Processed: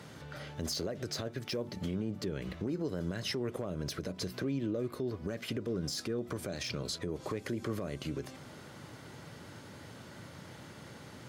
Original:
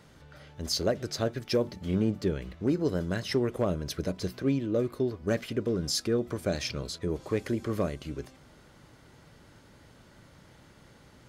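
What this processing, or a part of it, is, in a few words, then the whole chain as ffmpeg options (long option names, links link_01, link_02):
podcast mastering chain: -af "highpass=frequency=84:width=0.5412,highpass=frequency=84:width=1.3066,deesser=0.75,acompressor=threshold=-36dB:ratio=3,alimiter=level_in=9dB:limit=-24dB:level=0:latency=1:release=99,volume=-9dB,volume=7dB" -ar 44100 -c:a libmp3lame -b:a 112k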